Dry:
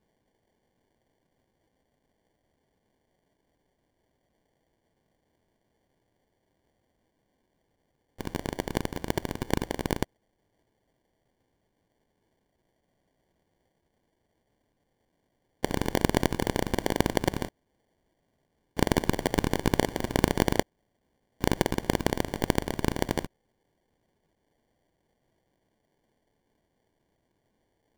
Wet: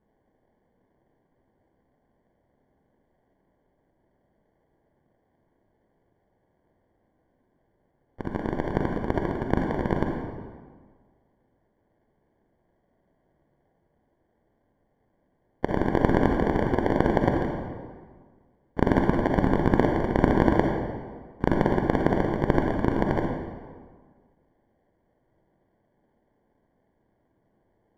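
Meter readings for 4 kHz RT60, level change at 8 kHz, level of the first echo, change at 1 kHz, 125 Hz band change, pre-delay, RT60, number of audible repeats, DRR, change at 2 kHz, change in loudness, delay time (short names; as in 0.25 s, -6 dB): 1.1 s, under -15 dB, none, +5.0 dB, +5.0 dB, 39 ms, 1.6 s, none, 1.5 dB, +1.5 dB, +4.0 dB, none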